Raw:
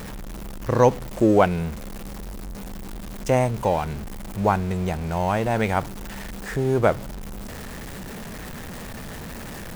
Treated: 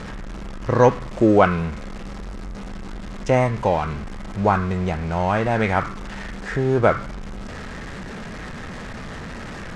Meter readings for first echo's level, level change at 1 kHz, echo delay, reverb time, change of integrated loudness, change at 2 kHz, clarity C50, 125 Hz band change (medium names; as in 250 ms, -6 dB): no echo, +2.5 dB, no echo, 0.50 s, +2.0 dB, +4.5 dB, 9.5 dB, +2.0 dB